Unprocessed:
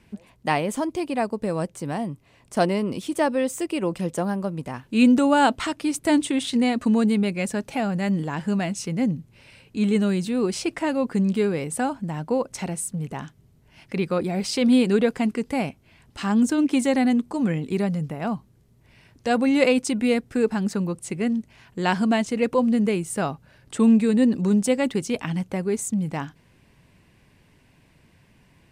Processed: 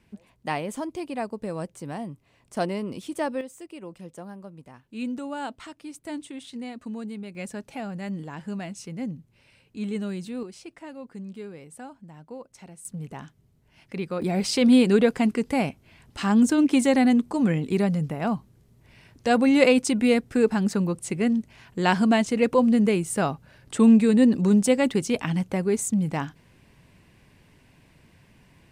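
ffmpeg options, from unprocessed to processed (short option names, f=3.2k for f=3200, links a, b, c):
-af "asetnsamples=n=441:p=0,asendcmd='3.41 volume volume -15dB;7.35 volume volume -9dB;10.43 volume volume -16.5dB;12.85 volume volume -6dB;14.22 volume volume 1dB',volume=-6dB"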